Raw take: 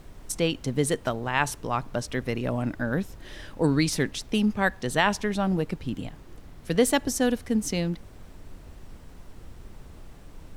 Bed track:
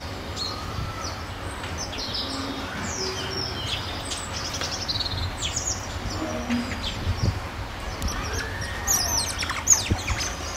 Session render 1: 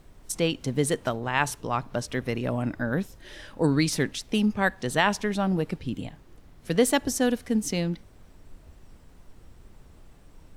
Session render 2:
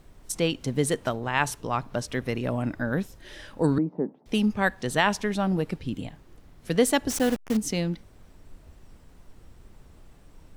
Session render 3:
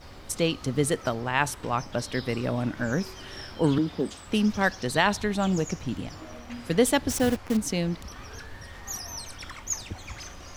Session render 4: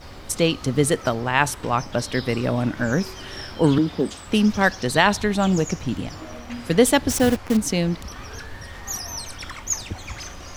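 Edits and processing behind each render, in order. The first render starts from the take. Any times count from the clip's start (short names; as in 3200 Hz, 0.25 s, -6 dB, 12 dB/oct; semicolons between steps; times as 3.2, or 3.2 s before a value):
noise print and reduce 6 dB
3.78–4.26 Chebyshev band-pass 180–890 Hz, order 3; 7.1–7.57 level-crossing sampler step -30 dBFS
add bed track -13.5 dB
gain +5.5 dB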